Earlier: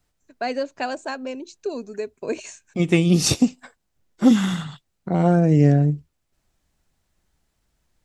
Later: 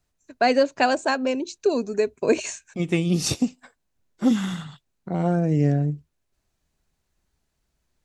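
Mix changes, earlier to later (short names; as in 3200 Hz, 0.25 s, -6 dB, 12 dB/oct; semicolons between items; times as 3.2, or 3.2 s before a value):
first voice +7.0 dB; second voice -5.0 dB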